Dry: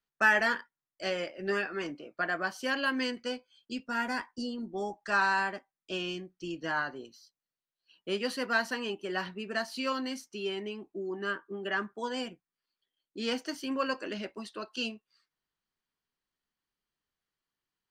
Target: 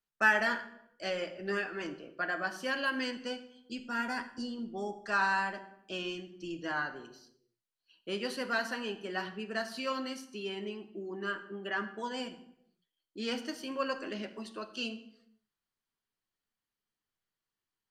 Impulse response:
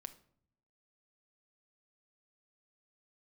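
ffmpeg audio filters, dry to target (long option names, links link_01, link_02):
-filter_complex "[1:a]atrim=start_sample=2205,afade=type=out:start_time=0.37:duration=0.01,atrim=end_sample=16758,asetrate=27783,aresample=44100[link_01];[0:a][link_01]afir=irnorm=-1:irlink=0"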